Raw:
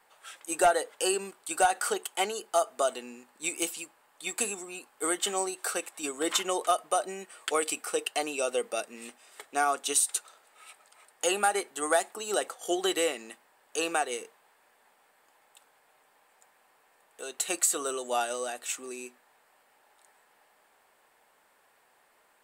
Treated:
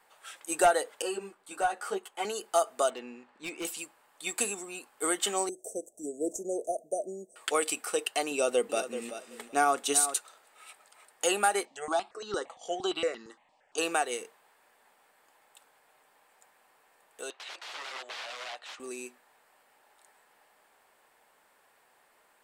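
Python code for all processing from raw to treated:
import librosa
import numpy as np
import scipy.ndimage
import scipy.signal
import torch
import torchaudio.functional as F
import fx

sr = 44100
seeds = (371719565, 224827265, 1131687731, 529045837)

y = fx.chain(x, sr, fx.high_shelf(hz=3000.0, db=-10.5),
    fx.ensemble(), at=(1.02, 2.25))
y = fx.chain(y, sr, fx.lowpass(hz=3300.0, slope=12),
    fx.overload_stage(gain_db=32.5), at=(2.9, 3.65))
y = fx.chain(y, sr, fx.cheby1_bandstop(low_hz=660.0, high_hz=6100.0, order=5),
    fx.peak_eq(hz=13000.0, db=-11.5, octaves=1.7), at=(5.49, 7.36))
y = fx.chain(y, sr, fx.low_shelf(hz=400.0, db=7.5),
    fx.echo_feedback(ms=382, feedback_pct=18, wet_db=-11), at=(8.31, 10.14))
y = fx.chain(y, sr, fx.lowpass(hz=6300.0, slope=24),
    fx.phaser_held(hz=8.7, low_hz=400.0, high_hz=2400.0), at=(11.65, 13.78))
y = fx.chain(y, sr, fx.overflow_wrap(gain_db=31.0),
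    fx.cheby1_bandpass(low_hz=700.0, high_hz=3800.0, order=2), at=(17.3, 18.8))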